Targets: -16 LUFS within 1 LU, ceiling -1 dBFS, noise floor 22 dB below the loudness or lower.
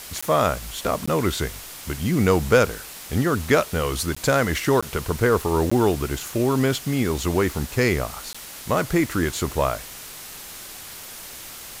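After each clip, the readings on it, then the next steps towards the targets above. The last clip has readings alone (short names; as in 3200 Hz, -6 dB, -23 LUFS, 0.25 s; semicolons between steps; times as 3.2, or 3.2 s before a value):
dropouts 6; longest dropout 15 ms; noise floor -39 dBFS; noise floor target -45 dBFS; loudness -22.5 LUFS; peak -3.0 dBFS; loudness target -16.0 LUFS
-> interpolate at 0.21/1.06/4.15/4.81/5.7/8.33, 15 ms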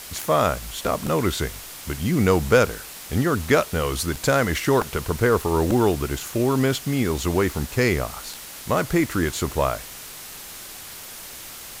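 dropouts 0; noise floor -39 dBFS; noise floor target -45 dBFS
-> denoiser 6 dB, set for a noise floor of -39 dBFS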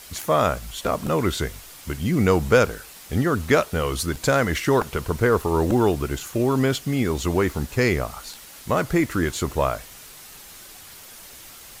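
noise floor -44 dBFS; noise floor target -45 dBFS
-> denoiser 6 dB, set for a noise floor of -44 dBFS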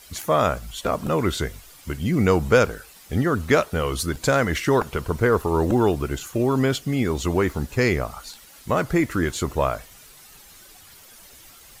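noise floor -48 dBFS; loudness -22.5 LUFS; peak -3.0 dBFS; loudness target -16.0 LUFS
-> gain +6.5 dB; limiter -1 dBFS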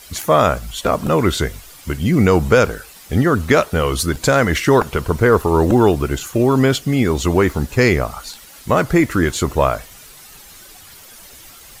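loudness -16.5 LUFS; peak -1.0 dBFS; noise floor -42 dBFS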